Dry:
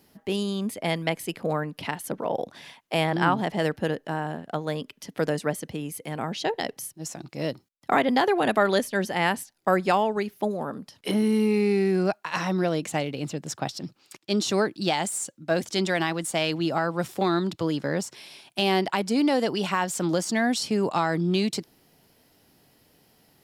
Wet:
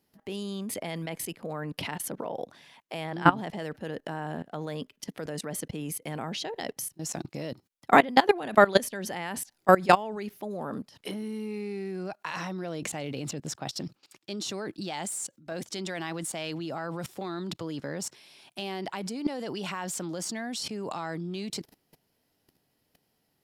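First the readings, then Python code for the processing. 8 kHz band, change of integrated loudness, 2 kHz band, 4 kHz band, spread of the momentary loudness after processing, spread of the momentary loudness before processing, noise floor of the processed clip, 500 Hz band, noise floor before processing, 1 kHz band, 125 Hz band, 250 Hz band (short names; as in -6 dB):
-1.5 dB, -4.0 dB, -3.0 dB, -5.5 dB, 15 LU, 11 LU, -75 dBFS, -4.5 dB, -65 dBFS, -1.5 dB, -6.0 dB, -7.0 dB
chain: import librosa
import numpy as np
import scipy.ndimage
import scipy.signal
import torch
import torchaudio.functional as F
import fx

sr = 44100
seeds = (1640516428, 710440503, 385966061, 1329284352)

y = fx.level_steps(x, sr, step_db=20)
y = F.gain(torch.from_numpy(y), 5.5).numpy()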